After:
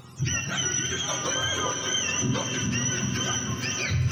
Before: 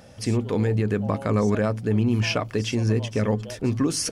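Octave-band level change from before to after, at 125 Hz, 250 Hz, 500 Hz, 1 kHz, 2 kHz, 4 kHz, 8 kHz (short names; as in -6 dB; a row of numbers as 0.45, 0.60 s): -5.5, -8.5, -10.0, 0.0, +5.0, +7.0, +9.5 dB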